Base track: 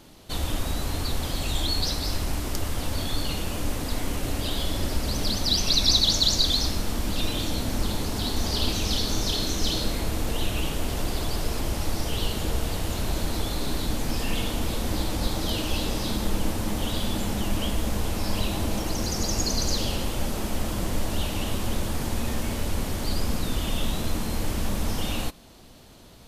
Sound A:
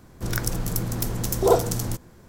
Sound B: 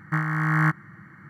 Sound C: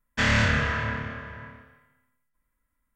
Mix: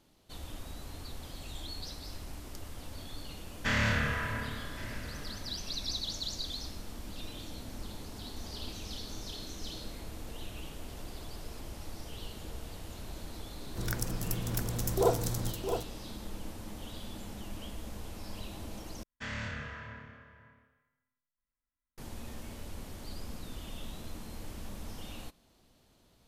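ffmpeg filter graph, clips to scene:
ffmpeg -i bed.wav -i cue0.wav -i cue1.wav -i cue2.wav -filter_complex "[3:a]asplit=2[link_01][link_02];[0:a]volume=-16dB[link_03];[link_01]aecho=1:1:1117:0.141[link_04];[1:a]aecho=1:1:663:0.422[link_05];[link_03]asplit=2[link_06][link_07];[link_06]atrim=end=19.034[link_08];[link_02]atrim=end=2.95,asetpts=PTS-STARTPTS,volume=-17dB[link_09];[link_07]atrim=start=21.976[link_10];[link_04]atrim=end=2.95,asetpts=PTS-STARTPTS,volume=-7dB,afade=type=in:duration=0.004:curve=hsin,afade=type=out:start_time=2.946:duration=0.004:curve=hsin,adelay=3470[link_11];[link_05]atrim=end=2.28,asetpts=PTS-STARTPTS,volume=-8.5dB,afade=type=in:duration=0.004:curve=hsin,afade=type=out:start_time=2.276:duration=0.004:curve=hsin,adelay=13550[link_12];[link_08][link_09]acrossfade=duration=0.004:curve1=hsin:curve2=hsin[link_13];[link_13][link_10]acrossfade=duration=0.004:curve1=hsin:curve2=hsin[link_14];[link_14][link_11][link_12]amix=inputs=3:normalize=0" out.wav

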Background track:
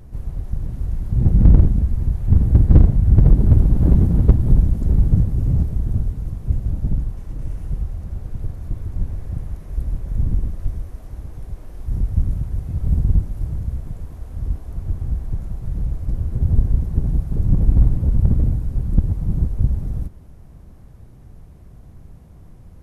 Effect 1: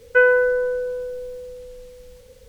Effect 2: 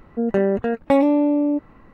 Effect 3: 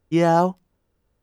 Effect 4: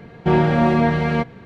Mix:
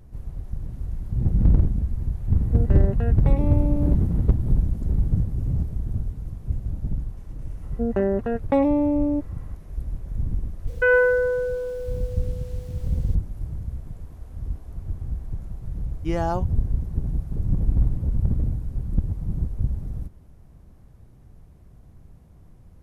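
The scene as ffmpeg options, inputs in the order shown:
ffmpeg -i bed.wav -i cue0.wav -i cue1.wav -i cue2.wav -filter_complex "[2:a]asplit=2[link_01][link_02];[0:a]volume=-6.5dB[link_03];[link_01]alimiter=limit=-13.5dB:level=0:latency=1:release=71[link_04];[link_02]highshelf=frequency=2400:gain=-10[link_05];[1:a]alimiter=level_in=8.5dB:limit=-1dB:release=50:level=0:latency=1[link_06];[link_04]atrim=end=1.93,asetpts=PTS-STARTPTS,volume=-8.5dB,afade=type=in:duration=0.004:curve=hsin,afade=type=out:start_time=1.926:duration=0.004:curve=hsin,adelay=2360[link_07];[link_05]atrim=end=1.93,asetpts=PTS-STARTPTS,volume=-3dB,afade=type=in:duration=0.004:curve=hsin,afade=type=out:start_time=1.926:duration=0.004:curve=hsin,adelay=336042S[link_08];[link_06]atrim=end=2.48,asetpts=PTS-STARTPTS,volume=-9.5dB,afade=type=in:duration=0.004:curve=hsin,afade=type=out:start_time=2.476:duration=0.004:curve=hsin,adelay=10670[link_09];[3:a]atrim=end=1.22,asetpts=PTS-STARTPTS,volume=-8.5dB,afade=type=in:duration=0.004:curve=hsin,afade=type=out:start_time=1.216:duration=0.004:curve=hsin,adelay=15930[link_10];[link_03][link_07][link_08][link_09][link_10]amix=inputs=5:normalize=0" out.wav

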